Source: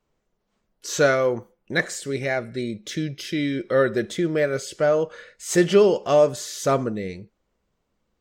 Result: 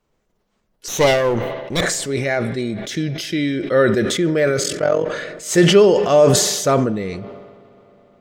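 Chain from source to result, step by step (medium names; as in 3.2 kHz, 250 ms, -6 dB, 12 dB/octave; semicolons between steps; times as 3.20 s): 0.88–1.81 s: comb filter that takes the minimum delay 0.31 ms; 4.63–5.07 s: AM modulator 44 Hz, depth 70%; on a send at -21 dB: reverberation RT60 5.0 s, pre-delay 41 ms; on the sum: decay stretcher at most 41 dB/s; trim +4 dB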